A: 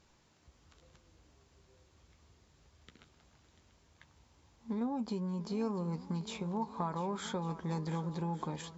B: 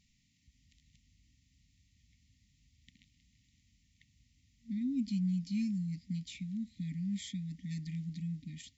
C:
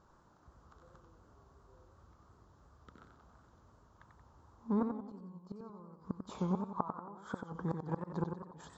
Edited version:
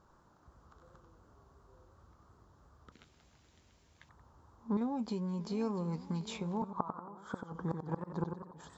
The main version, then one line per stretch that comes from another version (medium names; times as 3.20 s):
C
2.92–4.09 s: from A
4.77–6.62 s: from A
not used: B